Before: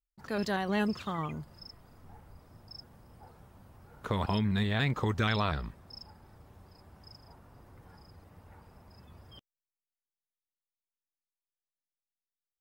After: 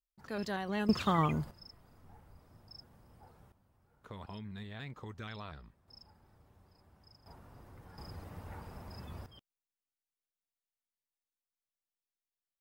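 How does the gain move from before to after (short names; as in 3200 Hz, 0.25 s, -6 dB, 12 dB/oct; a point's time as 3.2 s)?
-5.5 dB
from 0.89 s +6 dB
from 1.51 s -5 dB
from 3.52 s -16 dB
from 5.88 s -9 dB
from 7.26 s 0 dB
from 7.98 s +7.5 dB
from 9.26 s -5 dB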